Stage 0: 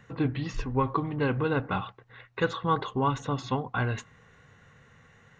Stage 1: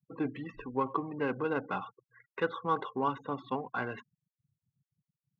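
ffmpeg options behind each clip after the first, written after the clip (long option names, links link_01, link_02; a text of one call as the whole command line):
ffmpeg -i in.wav -filter_complex "[0:a]afftfilt=real='re*gte(hypot(re,im),0.0126)':imag='im*gte(hypot(re,im),0.0126)':win_size=1024:overlap=0.75,adynamicsmooth=sensitivity=4.5:basefreq=3200,acrossover=split=190 4200:gain=0.0794 1 0.141[link_01][link_02][link_03];[link_01][link_02][link_03]amix=inputs=3:normalize=0,volume=-3.5dB" out.wav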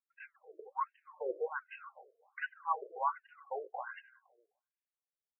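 ffmpeg -i in.wav -filter_complex "[0:a]flanger=delay=2.9:depth=4.6:regen=81:speed=1.3:shape=triangular,asplit=2[link_01][link_02];[link_02]adelay=256,lowpass=frequency=860:poles=1,volume=-13.5dB,asplit=2[link_03][link_04];[link_04]adelay=256,lowpass=frequency=860:poles=1,volume=0.22,asplit=2[link_05][link_06];[link_06]adelay=256,lowpass=frequency=860:poles=1,volume=0.22[link_07];[link_01][link_03][link_05][link_07]amix=inputs=4:normalize=0,afftfilt=real='re*between(b*sr/1024,470*pow(2200/470,0.5+0.5*sin(2*PI*1.3*pts/sr))/1.41,470*pow(2200/470,0.5+0.5*sin(2*PI*1.3*pts/sr))*1.41)':imag='im*between(b*sr/1024,470*pow(2200/470,0.5+0.5*sin(2*PI*1.3*pts/sr))/1.41,470*pow(2200/470,0.5+0.5*sin(2*PI*1.3*pts/sr))*1.41)':win_size=1024:overlap=0.75,volume=4dB" out.wav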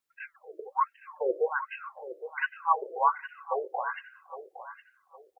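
ffmpeg -i in.wav -af "aecho=1:1:812|1624|2436:0.237|0.0711|0.0213,volume=9dB" out.wav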